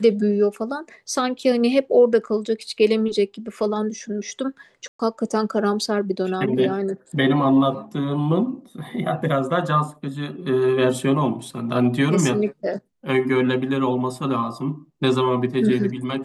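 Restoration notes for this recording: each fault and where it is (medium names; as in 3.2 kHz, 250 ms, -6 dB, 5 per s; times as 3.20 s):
4.88–4.99 s: dropout 114 ms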